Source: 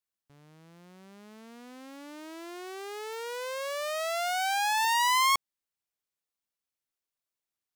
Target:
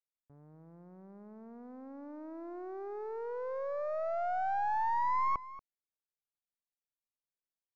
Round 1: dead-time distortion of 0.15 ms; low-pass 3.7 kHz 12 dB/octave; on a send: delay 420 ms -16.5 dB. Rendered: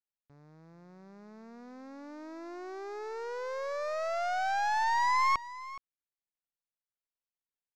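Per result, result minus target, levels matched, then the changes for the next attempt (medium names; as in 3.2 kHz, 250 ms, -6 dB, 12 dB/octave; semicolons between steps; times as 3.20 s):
4 kHz band +18.0 dB; echo 186 ms late
change: low-pass 950 Hz 12 dB/octave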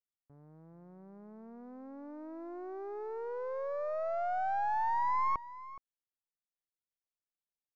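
echo 186 ms late
change: delay 234 ms -16.5 dB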